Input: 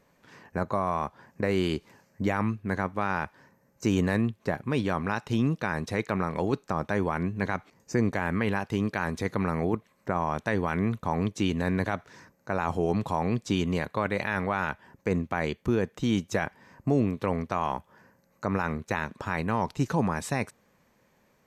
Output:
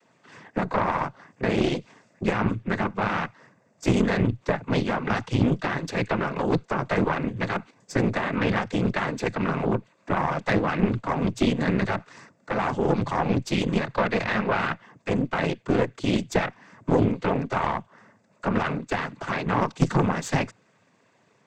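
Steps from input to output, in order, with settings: noise vocoder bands 16; added harmonics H 6 -17 dB, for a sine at -10.5 dBFS; gain +3.5 dB

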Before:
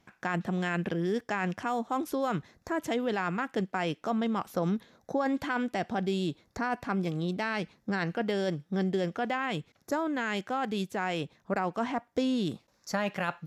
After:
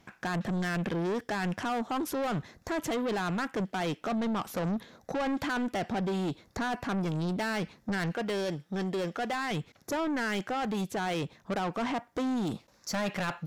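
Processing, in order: 8.12–9.51 low shelf 340 Hz -8.5 dB; soft clip -33.5 dBFS, distortion -8 dB; gain +6 dB

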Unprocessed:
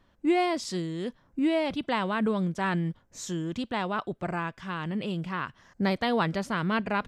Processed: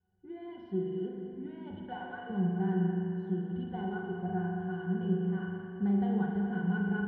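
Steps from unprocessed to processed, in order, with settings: opening faded in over 0.54 s; 1.88–2.3 steep high-pass 520 Hz; in parallel at 0 dB: compressor, threshold -37 dBFS, peak gain reduction 15 dB; on the sum: vibrato 1.9 Hz 88 cents; added noise pink -68 dBFS; air absorption 380 m; octave resonator F#, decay 0.13 s; on a send: analogue delay 0.216 s, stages 4096, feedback 71%, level -10 dB; on the sum: spring tank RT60 1.9 s, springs 40 ms, chirp 55 ms, DRR -0.5 dB

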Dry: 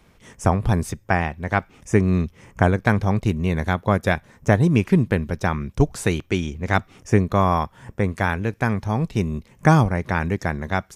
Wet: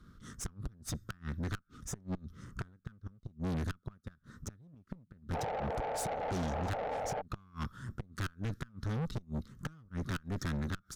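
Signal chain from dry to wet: EQ curve 260 Hz 0 dB, 850 Hz -24 dB, 1300 Hz +6 dB, 2400 Hz -19 dB, 3700 Hz 0 dB, 7800 Hz -4 dB; in parallel at -6 dB: wavefolder -19.5 dBFS; on the sum: flipped gate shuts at -13 dBFS, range -37 dB; painted sound noise, 5.33–7.22, 420–910 Hz -30 dBFS; tube stage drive 31 dB, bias 0.5; mismatched tape noise reduction decoder only; gain -1.5 dB

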